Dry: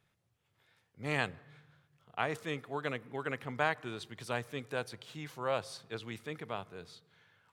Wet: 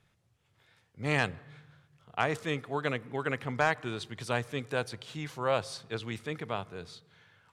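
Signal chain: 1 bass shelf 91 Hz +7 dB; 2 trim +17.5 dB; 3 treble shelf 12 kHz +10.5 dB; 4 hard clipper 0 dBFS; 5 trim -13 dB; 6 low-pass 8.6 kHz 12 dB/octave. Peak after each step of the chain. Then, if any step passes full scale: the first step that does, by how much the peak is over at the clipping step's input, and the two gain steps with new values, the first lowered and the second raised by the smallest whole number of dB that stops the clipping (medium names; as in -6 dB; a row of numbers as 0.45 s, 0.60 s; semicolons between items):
-14.0 dBFS, +3.5 dBFS, +3.5 dBFS, 0.0 dBFS, -13.0 dBFS, -12.5 dBFS; step 2, 3.5 dB; step 2 +13.5 dB, step 5 -9 dB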